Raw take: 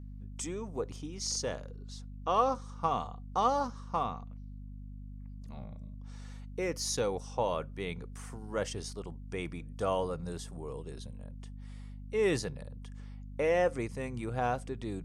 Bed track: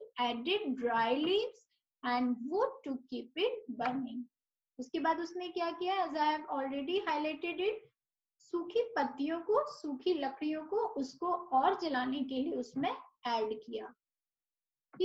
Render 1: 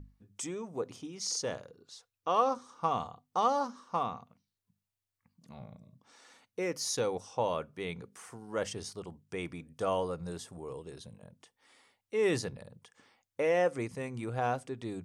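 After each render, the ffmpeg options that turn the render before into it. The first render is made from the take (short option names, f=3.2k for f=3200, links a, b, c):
-af "bandreject=f=50:t=h:w=6,bandreject=f=100:t=h:w=6,bandreject=f=150:t=h:w=6,bandreject=f=200:t=h:w=6,bandreject=f=250:t=h:w=6"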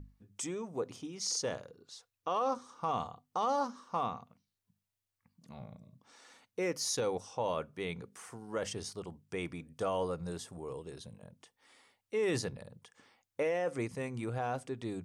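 -af "alimiter=limit=-24dB:level=0:latency=1:release=15"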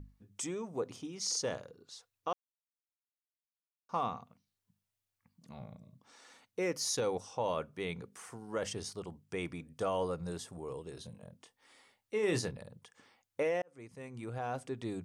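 -filter_complex "[0:a]asettb=1/sr,asplit=3[a][b][c];[a]atrim=end=10.924[d];[b]atrim=start=10.92:end=12.52,asetpts=PTS-STARTPTS,afade=t=in:d=0.004:c=qsin,afade=t=out:st=1.596:d=0.004:c=qsin,asplit=2[e][f];[f]adelay=24,volume=-9dB[g];[e][g]amix=inputs=2:normalize=0,atrim=end_sample=70560[h];[c]atrim=start=12.516[i];[d][h]acrossfade=d=0.004:c1=hsin:c2=qsin[j];[j][i]acrossfade=d=0.004:c1=qsin:c2=hsin,asplit=4[k][l][m][n];[k]atrim=end=2.33,asetpts=PTS-STARTPTS,afade=t=out:st=2.326:d=0.004:c=hsin[o];[l]atrim=start=2.33:end=3.89,asetpts=PTS-STARTPTS,volume=0[p];[m]atrim=start=3.89:end=13.62,asetpts=PTS-STARTPTS,afade=t=in:d=0.004:c=hsin,afade=t=out:st=9.726:d=0.004:c=hsin[q];[n]atrim=start=13.62,asetpts=PTS-STARTPTS,afade=t=in:d=1.11[r];[o][p][q][r]concat=n=4:v=0:a=1"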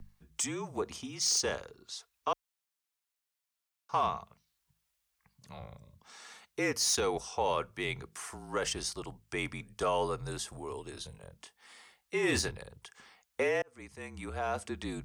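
-filter_complex "[0:a]afreqshift=-41,acrossover=split=750[a][b];[b]aeval=exprs='0.0668*sin(PI/2*1.58*val(0)/0.0668)':c=same[c];[a][c]amix=inputs=2:normalize=0"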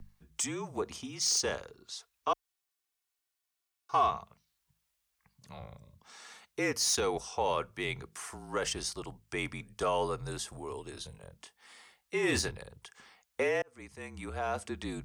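-filter_complex "[0:a]asettb=1/sr,asplit=3[a][b][c];[a]atrim=end=2.294[d];[b]atrim=start=2.29:end=4.11,asetpts=PTS-STARTPTS,afade=t=in:d=0.004:c=qsin,afade=t=out:st=1.816:d=0.004:c=qsin,aecho=1:1:2.7:0.66,atrim=end_sample=80262[e];[c]atrim=start=4.106[f];[d][e]acrossfade=d=0.004:c1=hsin:c2=qsin[g];[g][f]acrossfade=d=0.004:c1=qsin:c2=hsin"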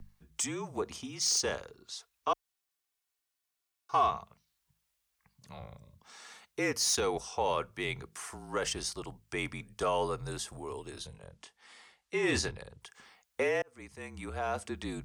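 -filter_complex "[0:a]asettb=1/sr,asplit=3[a][b][c];[a]atrim=end=11.064[d];[b]atrim=start=11.06:end=12.81,asetpts=PTS-STARTPTS,afade=t=in:d=0.004:c=qsin,afade=t=out:st=1.746:d=0.004:c=qsin,lowpass=8.8k[e];[c]atrim=start=12.806[f];[d][e]acrossfade=d=0.004:c1=hsin:c2=qsin[g];[g][f]acrossfade=d=0.004:c1=qsin:c2=hsin"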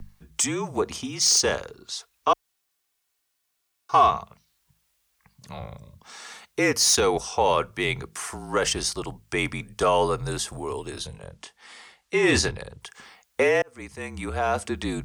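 -af "volume=9.5dB"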